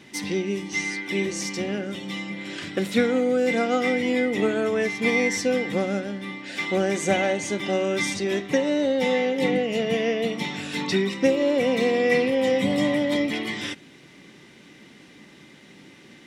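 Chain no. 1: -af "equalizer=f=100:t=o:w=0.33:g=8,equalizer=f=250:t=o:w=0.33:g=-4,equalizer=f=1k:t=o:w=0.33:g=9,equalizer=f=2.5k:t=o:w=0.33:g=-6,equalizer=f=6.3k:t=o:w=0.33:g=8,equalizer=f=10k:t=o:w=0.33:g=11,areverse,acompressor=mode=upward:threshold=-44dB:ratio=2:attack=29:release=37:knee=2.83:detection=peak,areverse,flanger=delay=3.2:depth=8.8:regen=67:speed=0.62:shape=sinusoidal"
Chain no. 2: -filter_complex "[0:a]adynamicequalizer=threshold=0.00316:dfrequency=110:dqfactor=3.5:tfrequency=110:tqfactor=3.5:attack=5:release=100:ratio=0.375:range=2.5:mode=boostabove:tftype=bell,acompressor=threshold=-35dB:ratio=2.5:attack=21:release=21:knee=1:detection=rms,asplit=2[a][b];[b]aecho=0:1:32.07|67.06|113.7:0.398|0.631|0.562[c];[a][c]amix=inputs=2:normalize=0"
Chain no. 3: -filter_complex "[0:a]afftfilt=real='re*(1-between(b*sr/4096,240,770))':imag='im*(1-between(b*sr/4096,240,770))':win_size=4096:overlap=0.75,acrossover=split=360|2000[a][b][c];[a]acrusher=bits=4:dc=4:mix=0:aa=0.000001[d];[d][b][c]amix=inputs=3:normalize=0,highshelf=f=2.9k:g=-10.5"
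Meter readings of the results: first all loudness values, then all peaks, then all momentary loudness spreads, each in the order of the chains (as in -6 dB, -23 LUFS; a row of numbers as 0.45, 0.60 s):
-28.5, -28.5, -32.5 LUFS; -12.5, -16.0, -15.0 dBFS; 9, 18, 7 LU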